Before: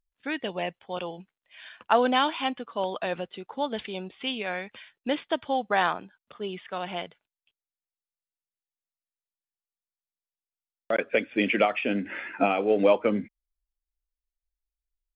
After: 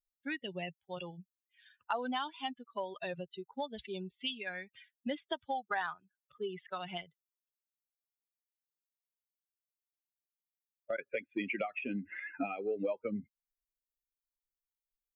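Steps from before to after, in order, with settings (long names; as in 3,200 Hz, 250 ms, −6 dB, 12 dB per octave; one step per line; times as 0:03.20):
spectral dynamics exaggerated over time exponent 2
0:04.75–0:06.98: parametric band 1,900 Hz +7 dB 2.8 octaves
downward compressor 4 to 1, threshold −42 dBFS, peak gain reduction 20 dB
level +6 dB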